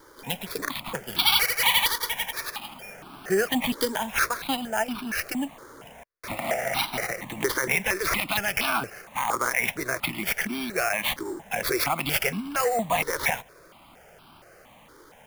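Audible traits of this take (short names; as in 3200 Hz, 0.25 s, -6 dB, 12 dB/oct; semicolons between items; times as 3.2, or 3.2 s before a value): aliases and images of a low sample rate 7900 Hz, jitter 0%; notches that jump at a steady rate 4.3 Hz 710–1900 Hz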